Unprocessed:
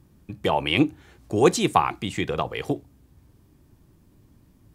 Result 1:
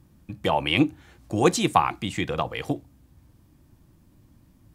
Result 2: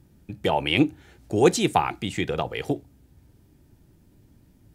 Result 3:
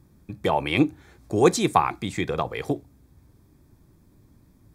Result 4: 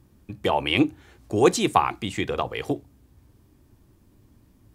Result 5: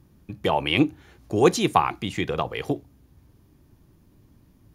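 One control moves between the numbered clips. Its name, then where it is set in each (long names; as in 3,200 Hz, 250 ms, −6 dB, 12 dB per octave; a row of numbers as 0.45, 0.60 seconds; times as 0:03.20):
notch filter, centre frequency: 410, 1,100, 2,900, 160, 8,000 Hertz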